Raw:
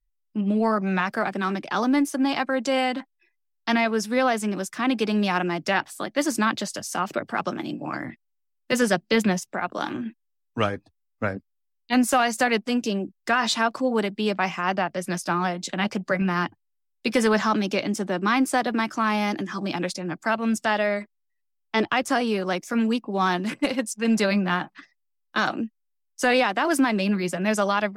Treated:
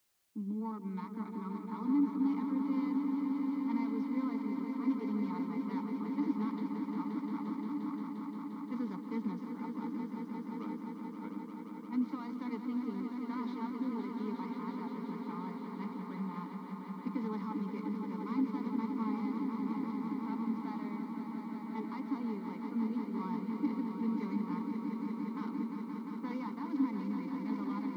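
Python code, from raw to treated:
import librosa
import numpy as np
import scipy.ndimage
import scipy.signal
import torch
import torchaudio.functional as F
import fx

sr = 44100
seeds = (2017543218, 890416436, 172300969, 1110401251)

p1 = fx.tracing_dist(x, sr, depth_ms=0.24)
p2 = fx.env_lowpass(p1, sr, base_hz=850.0, full_db=-17.0)
p3 = fx.leveller(p2, sr, passes=1)
p4 = fx.vowel_filter(p3, sr, vowel='u')
p5 = fx.cabinet(p4, sr, low_hz=140.0, low_slope=12, high_hz=5300.0, hz=(190.0, 400.0, 640.0, 4100.0), db=(4, 5, -6, 4))
p6 = fx.fixed_phaser(p5, sr, hz=520.0, stages=8)
p7 = p6 + fx.echo_swell(p6, sr, ms=175, loudest=5, wet_db=-8, dry=0)
p8 = fx.quant_dither(p7, sr, seeds[0], bits=12, dither='triangular')
y = F.gain(torch.from_numpy(p8), -4.5).numpy()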